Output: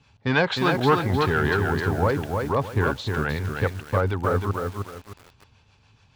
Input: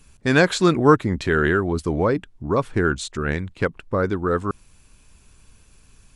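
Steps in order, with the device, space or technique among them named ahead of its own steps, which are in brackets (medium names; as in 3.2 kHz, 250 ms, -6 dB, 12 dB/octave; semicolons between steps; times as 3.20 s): tone controls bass +2 dB, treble +12 dB; guitar amplifier with harmonic tremolo (harmonic tremolo 6.9 Hz, depth 50%, crossover 420 Hz; saturation -11 dBFS, distortion -15 dB; cabinet simulation 95–3800 Hz, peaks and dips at 99 Hz +9 dB, 190 Hz -6 dB, 330 Hz -7 dB, 840 Hz +10 dB); bit-crushed delay 309 ms, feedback 35%, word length 7-bit, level -4 dB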